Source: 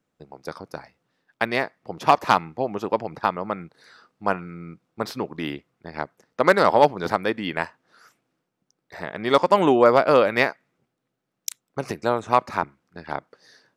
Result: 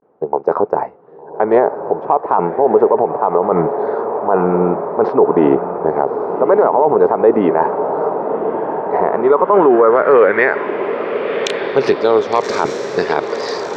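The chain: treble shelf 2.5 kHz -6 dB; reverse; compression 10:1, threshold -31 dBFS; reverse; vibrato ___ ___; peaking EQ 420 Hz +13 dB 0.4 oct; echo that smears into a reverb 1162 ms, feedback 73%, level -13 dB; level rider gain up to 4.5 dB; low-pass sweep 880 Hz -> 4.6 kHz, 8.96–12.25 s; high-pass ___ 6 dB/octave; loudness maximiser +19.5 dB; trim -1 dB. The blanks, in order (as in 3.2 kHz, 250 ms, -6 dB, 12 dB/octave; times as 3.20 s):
0.47 Hz, 97 cents, 330 Hz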